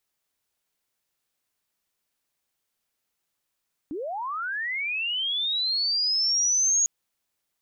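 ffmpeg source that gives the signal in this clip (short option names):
-f lavfi -i "aevalsrc='pow(10,(-29.5+11*t/2.95)/20)*sin(2*PI*(270*t+6430*t*t/(2*2.95)))':d=2.95:s=44100"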